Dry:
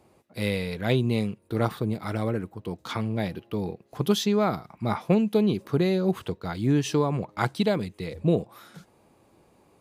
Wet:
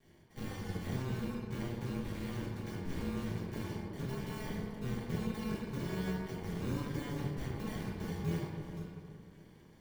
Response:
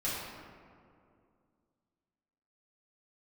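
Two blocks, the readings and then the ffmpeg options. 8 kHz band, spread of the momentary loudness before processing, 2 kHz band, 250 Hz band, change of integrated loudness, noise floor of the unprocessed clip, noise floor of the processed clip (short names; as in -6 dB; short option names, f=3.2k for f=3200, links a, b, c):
-12.0 dB, 9 LU, -11.0 dB, -12.0 dB, -12.5 dB, -62 dBFS, -59 dBFS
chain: -filter_complex "[0:a]acrusher=samples=34:mix=1:aa=0.000001,acompressor=threshold=-34dB:ratio=6,equalizer=f=600:t=o:w=0.75:g=-14.5,deesser=0.9[a];[1:a]atrim=start_sample=2205[b];[a][b]afir=irnorm=-1:irlink=0,tremolo=f=260:d=0.75,volume=-2.5dB"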